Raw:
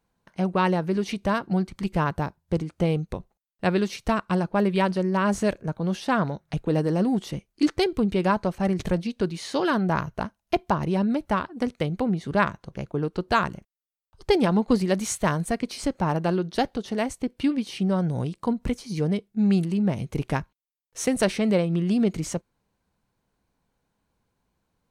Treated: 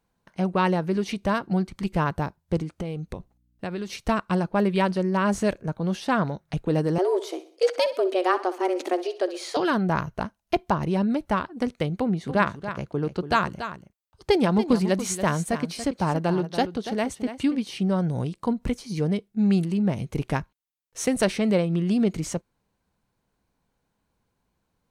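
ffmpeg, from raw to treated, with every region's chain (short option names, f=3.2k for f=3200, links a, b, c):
-filter_complex "[0:a]asettb=1/sr,asplit=3[a][b][c];[a]atrim=end=2.814[d];[b]atrim=start=2.81:end=4.01,asetpts=PTS-STARTPTS,afade=t=in:d=0.004:c=qsin,afade=t=out:st=1.196:d=0.004:c=qsin,acompressor=threshold=-28dB:ratio=4:attack=3.2:release=140:knee=1:detection=peak,aeval=exprs='val(0)+0.000501*(sin(2*PI*60*n/s)+sin(2*PI*2*60*n/s)/2+sin(2*PI*3*60*n/s)/3+sin(2*PI*4*60*n/s)/4+sin(2*PI*5*60*n/s)/5)':c=same[e];[c]atrim=start=4.006[f];[d][e]acrossfade=d=0.004:c1=hsin:c2=qsin[g];[g][f]acrossfade=d=0.004:c1=qsin:c2=hsin,asettb=1/sr,asplit=3[h][i][j];[h]atrim=end=6.984[k];[i]atrim=start=6.98:end=9.57,asetpts=PTS-STARTPTS,afade=t=in:d=0.004:c=qsin,afade=t=out:st=2.586:d=0.004:c=qsin,highpass=130,afreqshift=180,aecho=1:1:63|126|189|252:0.178|0.0818|0.0376|0.0173,atrim=end_sample=114219[l];[j]atrim=start=9.566[m];[k][l]acrossfade=d=0.004:c1=hsin:c2=qsin[n];[n][m]acrossfade=d=0.004:c1=qsin:c2=hsin,asettb=1/sr,asplit=3[o][p][q];[o]atrim=end=11.964[r];[p]atrim=start=11.96:end=17.64,asetpts=PTS-STARTPTS,afade=t=in:d=0.004:c=qsin,afade=t=out:st=5.676:d=0.004:c=qsin,highpass=54,aecho=1:1:284:0.282,atrim=end_sample=250488[s];[q]atrim=start=17.636[t];[r][s]acrossfade=d=0.004:c1=hsin:c2=qsin[u];[u][t]acrossfade=d=0.004:c1=qsin:c2=hsin"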